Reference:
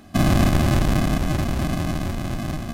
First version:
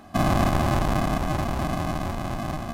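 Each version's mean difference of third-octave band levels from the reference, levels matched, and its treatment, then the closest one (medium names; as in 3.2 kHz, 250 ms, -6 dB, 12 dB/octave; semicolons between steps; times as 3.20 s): 2.0 dB: peaking EQ 910 Hz +10.5 dB 1.4 oct; in parallel at -6 dB: saturation -23.5 dBFS, distortion -6 dB; on the sum: trim -7 dB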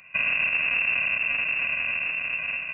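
19.5 dB: compression, threshold -19 dBFS, peak gain reduction 5.5 dB; frequency inversion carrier 2.7 kHz; trim -4 dB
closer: first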